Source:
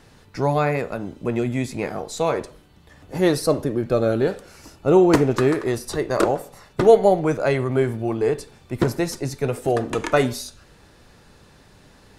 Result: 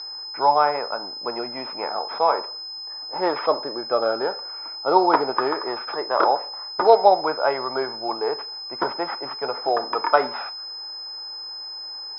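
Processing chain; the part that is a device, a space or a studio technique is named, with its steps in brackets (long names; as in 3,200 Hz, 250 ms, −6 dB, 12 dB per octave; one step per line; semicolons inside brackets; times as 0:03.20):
toy sound module (linearly interpolated sample-rate reduction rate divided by 6×; switching amplifier with a slow clock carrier 5,100 Hz; loudspeaker in its box 680–3,800 Hz, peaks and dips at 890 Hz +10 dB, 1,300 Hz +4 dB, 1,900 Hz −5 dB, 2,800 Hz −9 dB)
level +3.5 dB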